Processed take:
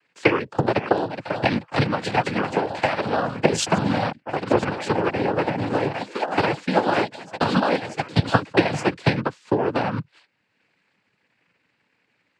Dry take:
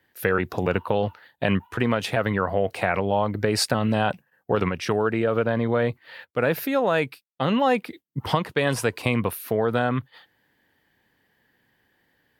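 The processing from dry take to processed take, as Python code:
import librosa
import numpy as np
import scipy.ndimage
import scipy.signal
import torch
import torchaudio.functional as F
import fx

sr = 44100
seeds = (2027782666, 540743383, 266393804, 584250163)

y = fx.echo_pitch(x, sr, ms=537, semitones=3, count=3, db_per_echo=-6.0)
y = fx.transient(y, sr, attack_db=10, sustain_db=-4)
y = fx.noise_vocoder(y, sr, seeds[0], bands=8)
y = F.gain(torch.from_numpy(y), -2.0).numpy()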